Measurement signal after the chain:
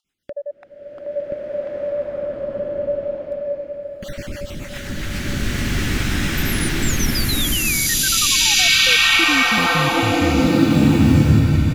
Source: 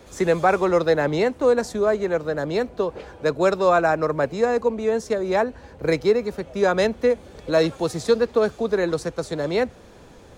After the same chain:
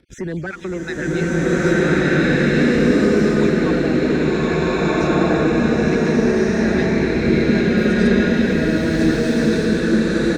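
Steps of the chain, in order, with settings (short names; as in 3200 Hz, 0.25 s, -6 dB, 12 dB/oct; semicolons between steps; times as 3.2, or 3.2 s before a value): random spectral dropouts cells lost 35%; gate -43 dBFS, range -45 dB; LPF 2000 Hz 6 dB/oct; band shelf 720 Hz -13 dB; in parallel at -2 dB: upward compressor, threshold -28 dBFS; on the sum: soft clip -14 dBFS; on a send: feedback echo 0.911 s, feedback 53%, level -13 dB; on the sum: rotary speaker horn 7.5 Hz; maximiser +19.5 dB; stuck buffer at 7.77/9.57, samples 512, times 7; bloom reverb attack 1.55 s, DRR -12 dB; gain -18 dB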